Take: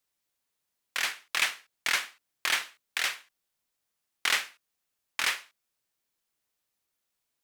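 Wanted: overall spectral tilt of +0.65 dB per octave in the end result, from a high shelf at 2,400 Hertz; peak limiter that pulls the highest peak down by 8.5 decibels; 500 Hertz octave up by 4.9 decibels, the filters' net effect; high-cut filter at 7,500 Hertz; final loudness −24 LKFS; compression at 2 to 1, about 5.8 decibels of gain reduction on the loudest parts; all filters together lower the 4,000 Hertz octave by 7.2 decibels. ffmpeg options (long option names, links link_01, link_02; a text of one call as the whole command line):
ffmpeg -i in.wav -af "lowpass=7500,equalizer=frequency=500:width_type=o:gain=6.5,highshelf=frequency=2400:gain=-4.5,equalizer=frequency=4000:width_type=o:gain=-5.5,acompressor=threshold=-36dB:ratio=2,volume=18.5dB,alimiter=limit=-8dB:level=0:latency=1" out.wav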